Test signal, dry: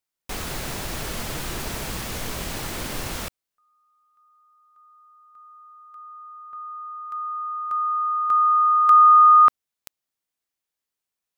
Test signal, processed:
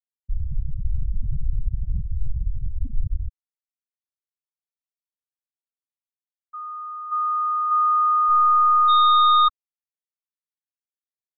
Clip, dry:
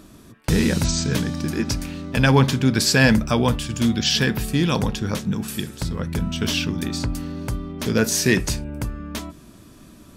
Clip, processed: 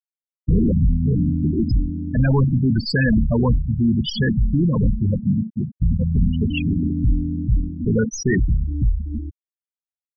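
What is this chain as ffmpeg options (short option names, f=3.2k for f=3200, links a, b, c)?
-af "aeval=exprs='(tanh(12.6*val(0)+0.1)-tanh(0.1))/12.6':c=same,lowshelf=f=79:g=8.5,afftfilt=real='re*gte(hypot(re,im),0.178)':imag='im*gte(hypot(re,im),0.178)':win_size=1024:overlap=0.75,volume=7.5dB"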